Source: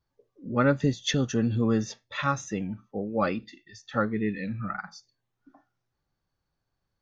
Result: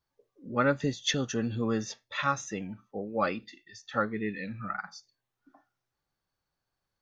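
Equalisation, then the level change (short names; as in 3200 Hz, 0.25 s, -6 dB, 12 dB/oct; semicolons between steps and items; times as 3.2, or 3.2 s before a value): low shelf 360 Hz -8 dB; 0.0 dB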